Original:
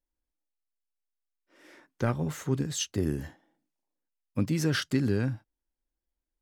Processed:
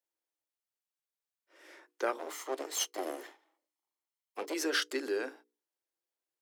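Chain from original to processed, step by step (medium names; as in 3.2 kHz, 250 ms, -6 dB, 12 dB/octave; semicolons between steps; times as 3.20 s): 2.18–4.54 s: comb filter that takes the minimum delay 0.96 ms; steep high-pass 330 Hz 48 dB/octave; hum notches 60/120/180/240/300/360/420/480 Hz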